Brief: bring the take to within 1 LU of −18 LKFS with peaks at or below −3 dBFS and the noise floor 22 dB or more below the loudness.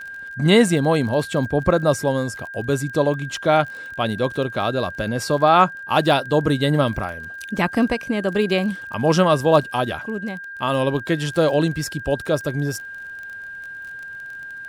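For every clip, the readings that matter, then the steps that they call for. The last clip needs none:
crackle rate 32 per second; interfering tone 1,600 Hz; level of the tone −32 dBFS; integrated loudness −20.5 LKFS; sample peak −3.0 dBFS; target loudness −18.0 LKFS
→ click removal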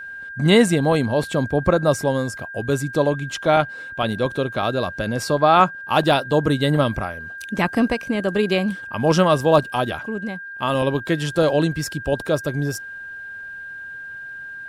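crackle rate 0.20 per second; interfering tone 1,600 Hz; level of the tone −32 dBFS
→ notch filter 1,600 Hz, Q 30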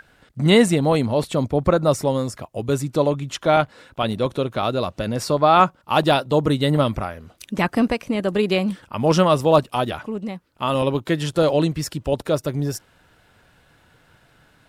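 interfering tone none found; integrated loudness −20.5 LKFS; sample peak −3.0 dBFS; target loudness −18.0 LKFS
→ level +2.5 dB
brickwall limiter −3 dBFS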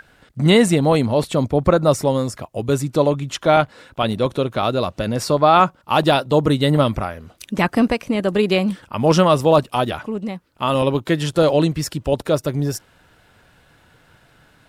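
integrated loudness −18.5 LKFS; sample peak −3.0 dBFS; background noise floor −55 dBFS

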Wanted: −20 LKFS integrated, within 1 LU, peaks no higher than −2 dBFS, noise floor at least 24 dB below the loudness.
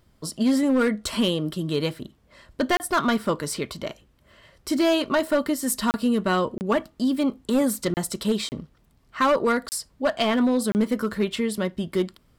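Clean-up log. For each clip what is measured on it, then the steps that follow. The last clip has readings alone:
share of clipped samples 1.4%; peaks flattened at −15.0 dBFS; number of dropouts 7; longest dropout 29 ms; integrated loudness −24.0 LKFS; sample peak −15.0 dBFS; target loudness −20.0 LKFS
→ clipped peaks rebuilt −15 dBFS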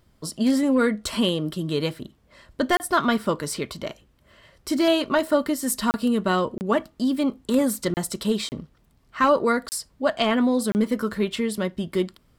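share of clipped samples 0.0%; number of dropouts 7; longest dropout 29 ms
→ repair the gap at 0:02.77/0:05.91/0:06.58/0:07.94/0:08.49/0:09.69/0:10.72, 29 ms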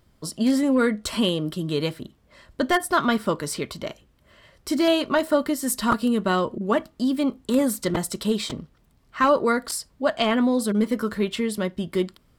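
number of dropouts 0; integrated loudness −23.5 LKFS; sample peak −7.5 dBFS; target loudness −20.0 LKFS
→ level +3.5 dB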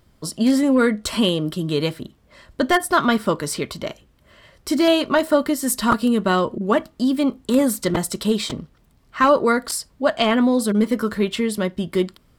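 integrated loudness −20.0 LKFS; sample peak −4.0 dBFS; background noise floor −57 dBFS

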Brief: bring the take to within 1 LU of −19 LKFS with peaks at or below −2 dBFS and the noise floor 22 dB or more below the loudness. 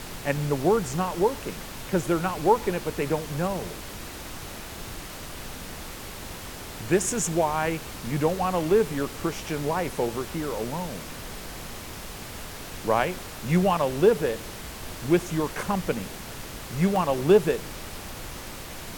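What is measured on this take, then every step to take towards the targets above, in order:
number of dropouts 5; longest dropout 1.1 ms; background noise floor −39 dBFS; target noise floor −49 dBFS; integrated loudness −26.5 LKFS; sample peak −7.0 dBFS; target loudness −19.0 LKFS
→ repair the gap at 0:00.42/0:03.57/0:07.10/0:12.99/0:16.96, 1.1 ms
noise reduction from a noise print 10 dB
level +7.5 dB
brickwall limiter −2 dBFS

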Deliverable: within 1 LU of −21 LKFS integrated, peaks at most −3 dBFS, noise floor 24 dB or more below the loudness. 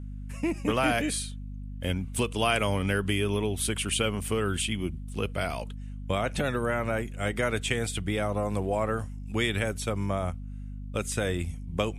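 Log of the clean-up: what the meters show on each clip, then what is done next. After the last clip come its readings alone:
mains hum 50 Hz; hum harmonics up to 250 Hz; level of the hum −35 dBFS; integrated loudness −29.5 LKFS; sample peak −9.5 dBFS; target loudness −21.0 LKFS
→ hum removal 50 Hz, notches 5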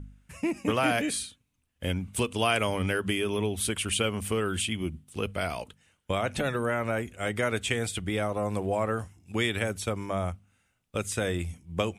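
mains hum none found; integrated loudness −29.5 LKFS; sample peak −10.5 dBFS; target loudness −21.0 LKFS
→ level +8.5 dB
brickwall limiter −3 dBFS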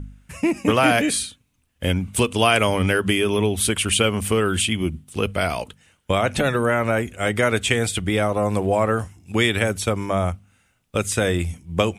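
integrated loudness −21.0 LKFS; sample peak −3.0 dBFS; background noise floor −66 dBFS

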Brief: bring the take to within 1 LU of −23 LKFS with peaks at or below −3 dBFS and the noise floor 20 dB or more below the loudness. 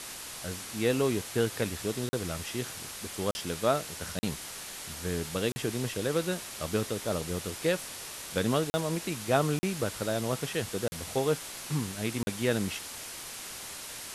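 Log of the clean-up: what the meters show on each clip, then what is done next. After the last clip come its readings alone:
number of dropouts 8; longest dropout 40 ms; background noise floor −42 dBFS; target noise floor −52 dBFS; integrated loudness −32.0 LKFS; sample peak −12.0 dBFS; target loudness −23.0 LKFS
→ repair the gap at 0:02.09/0:03.31/0:04.19/0:05.52/0:08.70/0:09.59/0:10.88/0:12.23, 40 ms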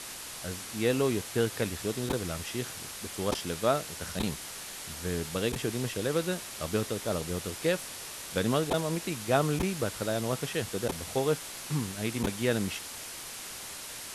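number of dropouts 0; background noise floor −42 dBFS; target noise floor −52 dBFS
→ broadband denoise 10 dB, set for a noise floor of −42 dBFS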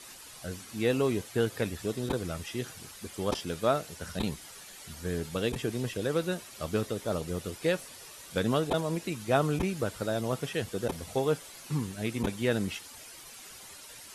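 background noise floor −49 dBFS; target noise floor −52 dBFS
→ broadband denoise 6 dB, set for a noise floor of −49 dBFS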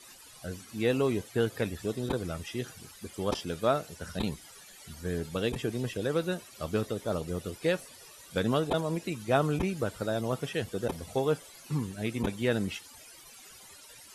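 background noise floor −52 dBFS; integrated loudness −32.0 LKFS; sample peak −12.5 dBFS; target loudness −23.0 LKFS
→ level +9 dB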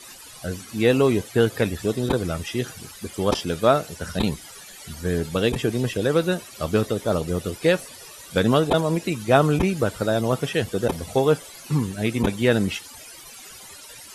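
integrated loudness −23.0 LKFS; sample peak −3.5 dBFS; background noise floor −43 dBFS

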